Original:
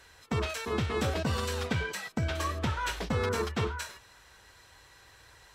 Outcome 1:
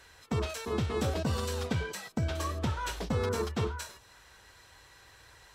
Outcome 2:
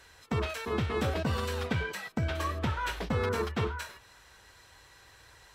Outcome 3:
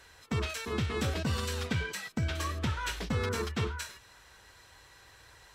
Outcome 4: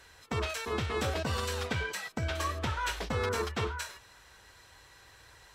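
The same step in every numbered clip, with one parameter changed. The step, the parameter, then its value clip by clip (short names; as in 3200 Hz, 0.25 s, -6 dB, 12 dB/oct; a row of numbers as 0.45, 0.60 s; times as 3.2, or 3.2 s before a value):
dynamic EQ, frequency: 2000, 6900, 710, 180 Hz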